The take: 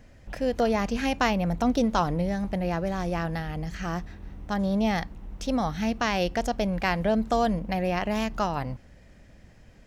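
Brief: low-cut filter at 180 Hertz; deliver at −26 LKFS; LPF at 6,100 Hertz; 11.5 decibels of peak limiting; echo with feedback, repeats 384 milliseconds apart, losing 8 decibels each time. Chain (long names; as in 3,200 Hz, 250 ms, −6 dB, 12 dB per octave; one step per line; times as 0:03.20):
high-pass filter 180 Hz
low-pass filter 6,100 Hz
brickwall limiter −21.5 dBFS
repeating echo 384 ms, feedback 40%, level −8 dB
level +5.5 dB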